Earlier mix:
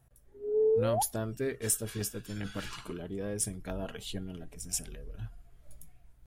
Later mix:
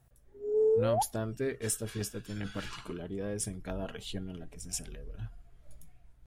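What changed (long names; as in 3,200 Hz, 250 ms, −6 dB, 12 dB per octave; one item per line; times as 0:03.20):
background: remove low-pass filter 1,000 Hz
master: add high-shelf EQ 11,000 Hz −11 dB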